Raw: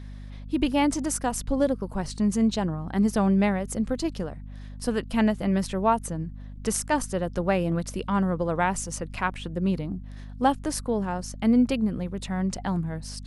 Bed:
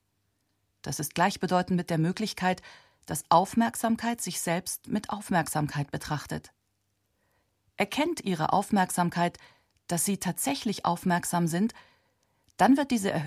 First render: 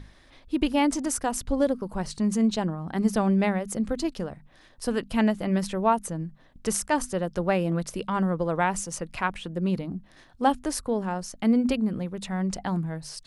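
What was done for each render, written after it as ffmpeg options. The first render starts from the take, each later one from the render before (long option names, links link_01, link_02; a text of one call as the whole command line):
ffmpeg -i in.wav -af "bandreject=frequency=50:width_type=h:width=6,bandreject=frequency=100:width_type=h:width=6,bandreject=frequency=150:width_type=h:width=6,bandreject=frequency=200:width_type=h:width=6,bandreject=frequency=250:width_type=h:width=6" out.wav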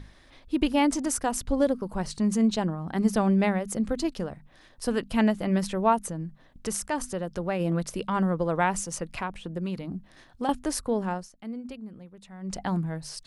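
ffmpeg -i in.wav -filter_complex "[0:a]asplit=3[link_01][link_02][link_03];[link_01]afade=type=out:start_time=6.1:duration=0.02[link_04];[link_02]acompressor=threshold=-32dB:ratio=1.5:attack=3.2:release=140:knee=1:detection=peak,afade=type=in:start_time=6.1:duration=0.02,afade=type=out:start_time=7.59:duration=0.02[link_05];[link_03]afade=type=in:start_time=7.59:duration=0.02[link_06];[link_04][link_05][link_06]amix=inputs=3:normalize=0,asettb=1/sr,asplit=3[link_07][link_08][link_09];[link_07]atrim=end=9.194[link_10];[link_08]atrim=start=9.19:end=10.49,asetpts=PTS-STARTPTS,afade=type=in:duration=0.004:curve=qsin,afade=type=out:start_time=1.296:duration=0.004:curve=qsin,acrossover=split=1100|2300[link_11][link_12][link_13];[link_11]acompressor=threshold=-29dB:ratio=4[link_14];[link_12]acompressor=threshold=-45dB:ratio=4[link_15];[link_13]acompressor=threshold=-47dB:ratio=4[link_16];[link_14][link_15][link_16]amix=inputs=3:normalize=0[link_17];[link_09]atrim=start=10.486[link_18];[link_10][link_17]acrossfade=duration=0.004:curve1=hsin:curve2=qsin[link_19];[link_19][link_18]acrossfade=duration=0.004:curve1=qsin:curve2=hsin,asplit=3[link_20][link_21][link_22];[link_20]atrim=end=11.29,asetpts=PTS-STARTPTS,afade=type=out:start_time=11.12:duration=0.17:silence=0.177828[link_23];[link_21]atrim=start=11.29:end=12.41,asetpts=PTS-STARTPTS,volume=-15dB[link_24];[link_22]atrim=start=12.41,asetpts=PTS-STARTPTS,afade=type=in:duration=0.17:silence=0.177828[link_25];[link_23][link_24][link_25]concat=n=3:v=0:a=1" out.wav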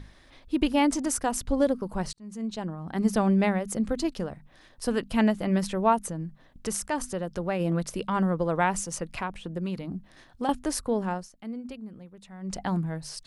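ffmpeg -i in.wav -filter_complex "[0:a]asplit=2[link_01][link_02];[link_01]atrim=end=2.13,asetpts=PTS-STARTPTS,afade=type=out:start_time=2.126:duration=0.004:curve=hsin[link_03];[link_02]atrim=start=2.13,asetpts=PTS-STARTPTS,afade=type=in:duration=1.01[link_04];[link_03][link_04]concat=n=2:v=0:a=1" out.wav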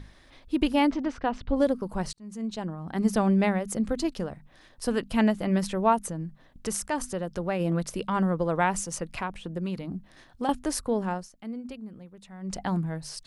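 ffmpeg -i in.wav -filter_complex "[0:a]asettb=1/sr,asplit=3[link_01][link_02][link_03];[link_01]atrim=end=0.904[link_04];[link_02]atrim=start=0.9:end=1.56,asetpts=PTS-STARTPTS,afade=type=in:duration=0.004:curve=qsin,afade=type=out:start_time=0.656:duration=0.004:curve=qsin,lowpass=frequency=3600:width=0.5412,lowpass=frequency=3600:width=1.3066[link_05];[link_03]atrim=start=1.556[link_06];[link_04][link_05]acrossfade=duration=0.004:curve1=hsin:curve2=qsin[link_07];[link_07][link_06]acrossfade=duration=0.004:curve1=qsin:curve2=hsin" out.wav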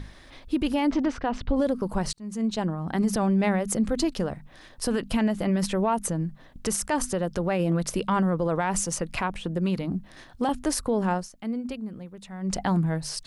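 ffmpeg -i in.wav -af "acontrast=51,alimiter=limit=-16dB:level=0:latency=1:release=68" out.wav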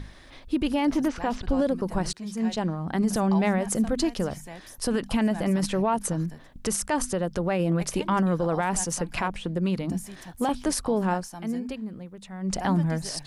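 ffmpeg -i in.wav -i bed.wav -filter_complex "[1:a]volume=-14dB[link_01];[0:a][link_01]amix=inputs=2:normalize=0" out.wav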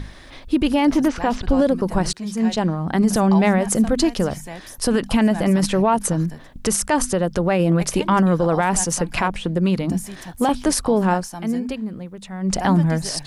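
ffmpeg -i in.wav -af "volume=7dB" out.wav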